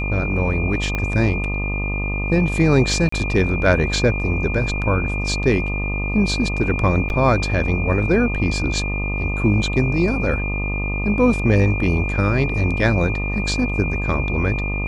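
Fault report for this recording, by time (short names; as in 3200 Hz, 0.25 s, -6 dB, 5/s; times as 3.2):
buzz 50 Hz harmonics 25 -24 dBFS
tone 2400 Hz -26 dBFS
0.95 pop -10 dBFS
3.09–3.12 gap 34 ms
7.09–7.1 gap 9.9 ms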